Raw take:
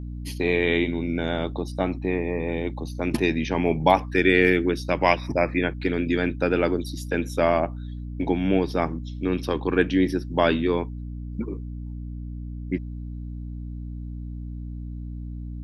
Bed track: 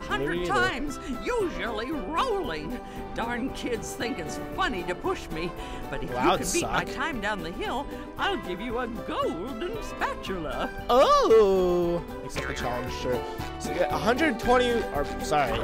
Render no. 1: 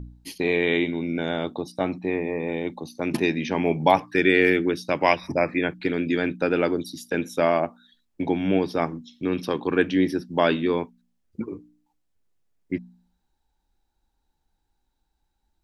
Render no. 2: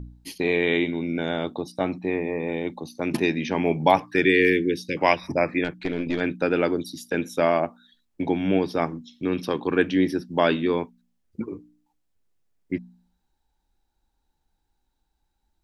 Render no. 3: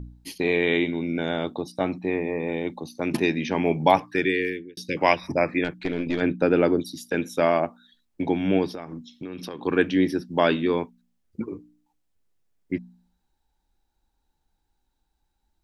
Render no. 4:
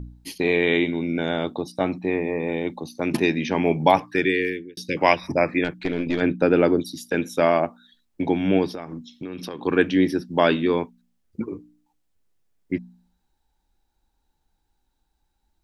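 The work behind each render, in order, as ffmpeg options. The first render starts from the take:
-af "bandreject=f=60:t=h:w=4,bandreject=f=120:t=h:w=4,bandreject=f=180:t=h:w=4,bandreject=f=240:t=h:w=4,bandreject=f=300:t=h:w=4"
-filter_complex "[0:a]asettb=1/sr,asplit=3[s0][s1][s2];[s0]atrim=end=4.244[s3];[s1]atrim=start=4.24:end=4.97,asetpts=PTS-STARTPTS,afade=t=in:d=0.004:c=qsin,afade=t=out:st=0.726:d=0.004:c=qsin,asuperstop=centerf=920:order=20:qfactor=0.86[s4];[s2]atrim=start=4.966[s5];[s3][s4]acrossfade=d=0.004:c1=hsin:c2=qsin[s6];[s6][s5]acrossfade=d=0.004:c1=qsin:c2=hsin,asettb=1/sr,asplit=3[s7][s8][s9];[s7]atrim=end=5.644[s10];[s8]atrim=start=5.64:end=6.21,asetpts=PTS-STARTPTS,afade=t=in:d=0.004:c=qsin,afade=t=out:st=0.566:d=0.004:c=qsin,aeval=exprs='(tanh(7.94*val(0)+0.45)-tanh(0.45))/7.94':c=same[s11];[s9]atrim=start=6.206[s12];[s10][s11]acrossfade=d=0.004:c1=hsin:c2=qsin[s13];[s13][s12]acrossfade=d=0.004:c1=qsin:c2=hsin"
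-filter_complex "[0:a]asettb=1/sr,asplit=3[s0][s1][s2];[s0]atrim=end=6.224[s3];[s1]atrim=start=6.22:end=6.8,asetpts=PTS-STARTPTS,afade=t=in:d=0.004:c=qsin,afade=t=out:st=0.576:d=0.004:c=qsin,tiltshelf=f=1100:g=4[s4];[s2]atrim=start=6.796[s5];[s3][s4]acrossfade=d=0.004:c1=hsin:c2=qsin[s6];[s6][s5]acrossfade=d=0.004:c1=qsin:c2=hsin,asettb=1/sr,asplit=3[s7][s8][s9];[s7]atrim=end=8.694[s10];[s8]atrim=start=8.69:end=9.63,asetpts=PTS-STARTPTS,afade=t=in:d=0.004:c=qsin,afade=t=out:st=0.936:d=0.004:c=qsin,acompressor=threshold=0.0316:ratio=12:attack=3.2:release=140:knee=1:detection=peak[s11];[s9]atrim=start=9.626[s12];[s10][s11]acrossfade=d=0.004:c1=hsin:c2=qsin[s13];[s13][s12]acrossfade=d=0.004:c1=qsin:c2=hsin,asplit=2[s14][s15];[s14]atrim=end=4.77,asetpts=PTS-STARTPTS,afade=t=out:st=3.97:d=0.8[s16];[s15]atrim=start=4.77,asetpts=PTS-STARTPTS,afade=t=in:d=0.004:c=hsin[s17];[s16][s17]concat=n=2:v=0:a=1"
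-af "volume=1.26,alimiter=limit=0.794:level=0:latency=1"

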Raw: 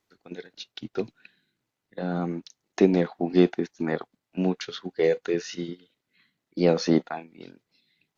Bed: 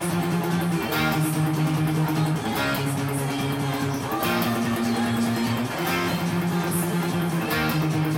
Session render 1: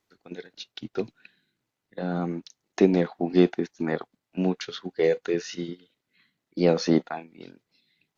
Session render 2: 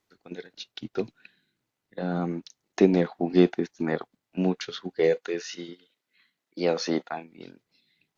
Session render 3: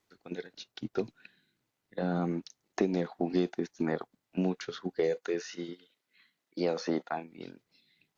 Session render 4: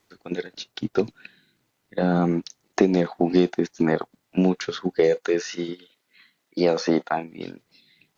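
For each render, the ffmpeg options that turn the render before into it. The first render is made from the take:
-af anull
-filter_complex "[0:a]asettb=1/sr,asplit=3[s0][s1][s2];[s0]atrim=end=5.164[s3];[s1]atrim=start=5.16:end=7.12,asetpts=PTS-STARTPTS,afade=t=in:d=0.004:c=qsin,afade=t=out:st=1.956:d=0.004:c=qsin,highpass=f=520:p=1[s4];[s2]atrim=start=7.116[s5];[s3][s4]acrossfade=d=0.004:c1=hsin:c2=qsin[s6];[s6][s5]acrossfade=d=0.004:c1=qsin:c2=hsin"
-filter_complex "[0:a]acrossover=split=2000|4600[s0][s1][s2];[s0]acompressor=threshold=0.0501:ratio=4[s3];[s1]acompressor=threshold=0.00178:ratio=4[s4];[s2]acompressor=threshold=0.00447:ratio=4[s5];[s3][s4][s5]amix=inputs=3:normalize=0"
-af "volume=3.16"

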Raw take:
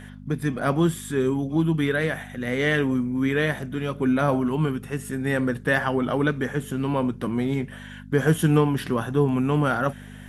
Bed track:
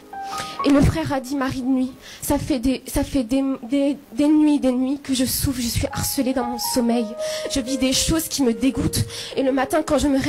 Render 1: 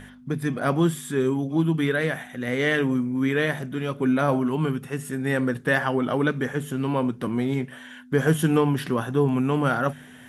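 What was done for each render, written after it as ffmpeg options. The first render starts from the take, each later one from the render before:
-af "bandreject=f=50:t=h:w=4,bandreject=f=100:t=h:w=4,bandreject=f=150:t=h:w=4,bandreject=f=200:t=h:w=4"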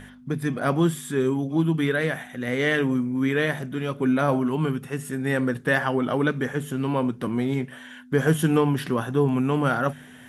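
-af anull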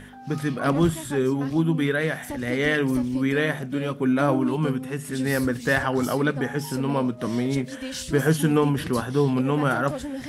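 -filter_complex "[1:a]volume=0.2[s0];[0:a][s0]amix=inputs=2:normalize=0"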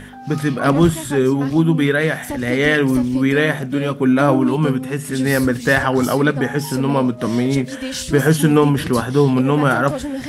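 -af "volume=2.24,alimiter=limit=0.794:level=0:latency=1"

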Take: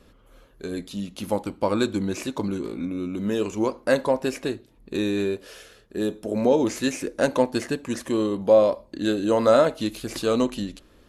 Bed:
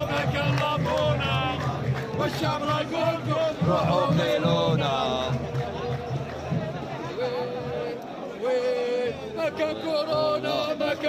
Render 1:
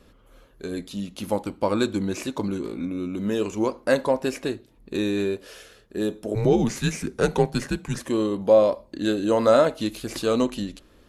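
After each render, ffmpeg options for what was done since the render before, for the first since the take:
-filter_complex "[0:a]asettb=1/sr,asplit=3[s0][s1][s2];[s0]atrim=end=6.354[s3];[s1]atrim=start=6.35:end=7.99,asetpts=PTS-STARTPTS,afade=t=in:d=0.004:c=qsin,afade=t=out:st=1.636:d=0.004:c=qsin,afreqshift=-100[s4];[s2]atrim=start=7.986[s5];[s3][s4]acrossfade=d=0.004:c1=hsin:c2=qsin[s6];[s6][s5]acrossfade=d=0.004:c1=qsin:c2=hsin"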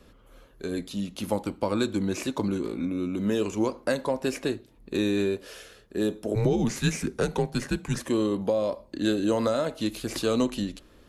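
-filter_complex "[0:a]alimiter=limit=0.282:level=0:latency=1:release=451,acrossover=split=240|3000[s0][s1][s2];[s1]acompressor=threshold=0.0708:ratio=6[s3];[s0][s3][s2]amix=inputs=3:normalize=0"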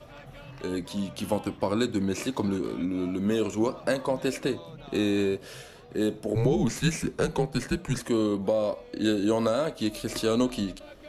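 -filter_complex "[1:a]volume=0.0841[s0];[0:a][s0]amix=inputs=2:normalize=0"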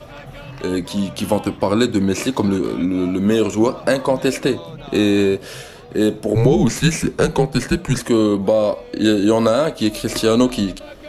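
-af "volume=3.16,alimiter=limit=0.708:level=0:latency=1"

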